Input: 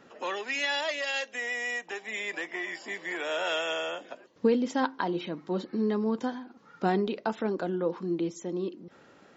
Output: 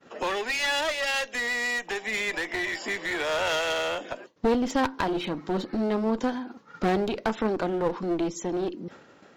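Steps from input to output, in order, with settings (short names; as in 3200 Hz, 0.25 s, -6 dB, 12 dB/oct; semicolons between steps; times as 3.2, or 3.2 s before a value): expander -49 dBFS; in parallel at +1.5 dB: compressor, threshold -39 dBFS, peak gain reduction 18.5 dB; on the sum: one-sided clip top -33 dBFS, bottom -16 dBFS; gain +3.5 dB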